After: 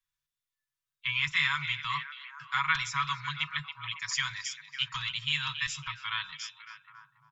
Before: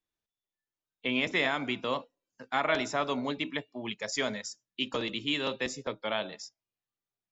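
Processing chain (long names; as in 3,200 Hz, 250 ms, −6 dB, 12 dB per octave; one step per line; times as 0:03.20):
Chebyshev band-stop filter 150–1,000 Hz, order 5
comb filter 6.2 ms, depth 51%
tape wow and flutter 23 cents
echo through a band-pass that steps 277 ms, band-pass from 3,000 Hz, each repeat −0.7 octaves, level −9 dB
level +2 dB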